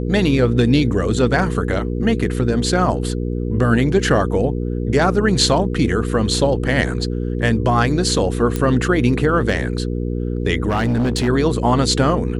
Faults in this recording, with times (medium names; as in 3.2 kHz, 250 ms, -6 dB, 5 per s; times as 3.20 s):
hum 60 Hz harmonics 8 -22 dBFS
8.56 s: pop -7 dBFS
10.68–11.29 s: clipped -14 dBFS